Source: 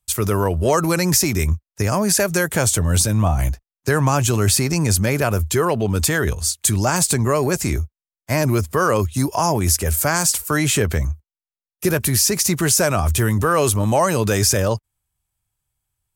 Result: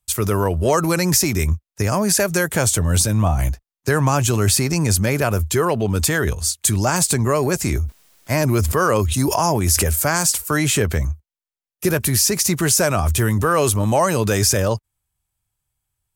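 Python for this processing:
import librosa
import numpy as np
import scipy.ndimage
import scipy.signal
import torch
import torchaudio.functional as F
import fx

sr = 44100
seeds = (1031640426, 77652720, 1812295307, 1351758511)

y = fx.sustainer(x, sr, db_per_s=22.0, at=(7.64, 9.91))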